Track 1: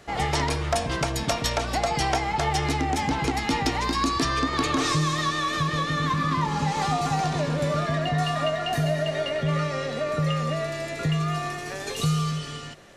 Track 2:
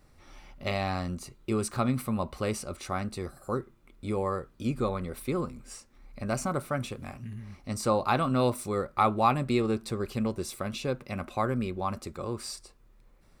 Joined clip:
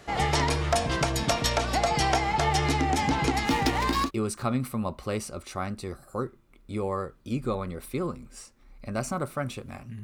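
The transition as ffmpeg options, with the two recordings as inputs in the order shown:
-filter_complex "[0:a]asettb=1/sr,asplit=3[s0][s1][s2];[s0]atrim=end=3.454[s3];[s1]atrim=start=3.45:end=4.11,asetpts=PTS-STARTPTS,afade=t=in:d=0.004:c=qsin,afade=t=out:st=0.656:d=0.004:c=qsin,adynamicsmooth=sensitivity=6.5:basefreq=700[s4];[s2]atrim=start=4.106[s5];[s3][s4]acrossfade=d=0.004:c1=hsin:c2=qsin[s6];[s6][s5]acrossfade=d=0.004:c1=qsin:c2=hsin,apad=whole_dur=10.03,atrim=end=10.03,atrim=end=4.11,asetpts=PTS-STARTPTS[s7];[1:a]atrim=start=1.35:end=7.37,asetpts=PTS-STARTPTS[s8];[s7][s8]acrossfade=d=0.1:c1=tri:c2=tri"

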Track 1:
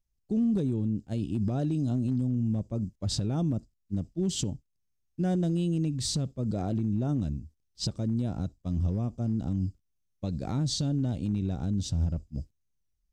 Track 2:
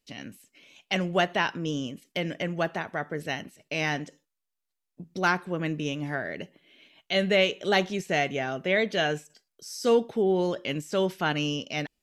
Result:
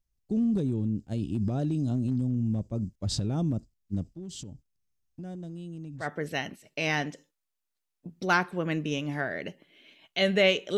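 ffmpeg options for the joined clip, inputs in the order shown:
-filter_complex "[0:a]asettb=1/sr,asplit=3[s0][s1][s2];[s0]atrim=end=4.034[s3];[s1]atrim=start=4.03:end=6.08,asetpts=PTS-STARTPTS,afade=t=in:d=0.004:c=qsin,afade=t=out:st=2.046:d=0.004:c=qsin,acompressor=threshold=0.00891:ratio=3:attack=3.2:release=140:knee=1:detection=peak[s4];[s2]atrim=start=6.076[s5];[s3][s4]acrossfade=d=0.004:c1=hsin:c2=qsin[s6];[s6][s5]acrossfade=d=0.004:c1=qsin:c2=hsin,apad=whole_dur=10.77,atrim=end=10.77,atrim=end=6.08,asetpts=PTS-STARTPTS[s7];[1:a]atrim=start=2.9:end=7.71,asetpts=PTS-STARTPTS[s8];[s7][s8]acrossfade=d=0.12:c1=tri:c2=tri"

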